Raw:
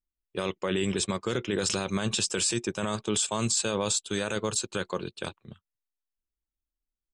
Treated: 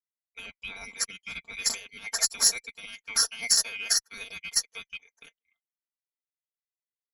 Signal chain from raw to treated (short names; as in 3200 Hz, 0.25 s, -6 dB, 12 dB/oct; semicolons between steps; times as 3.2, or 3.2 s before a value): band-swap scrambler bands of 2000 Hz; tone controls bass +8 dB, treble +8 dB; in parallel at -5 dB: soft clip -16 dBFS, distortion -16 dB; on the sum: added harmonics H 2 -44 dB, 3 -17 dB, 4 -31 dB, 6 -43 dB, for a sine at -5 dBFS; high shelf 8500 Hz -4.5 dB; comb 4.4 ms, depth 98%; upward expander 2.5:1, over -38 dBFS